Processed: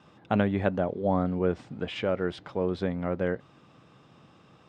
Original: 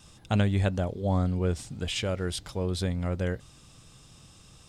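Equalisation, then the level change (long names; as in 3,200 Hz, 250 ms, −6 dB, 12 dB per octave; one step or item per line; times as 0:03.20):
high-pass filter 200 Hz 12 dB per octave
low-pass filter 1,800 Hz 12 dB per octave
+4.5 dB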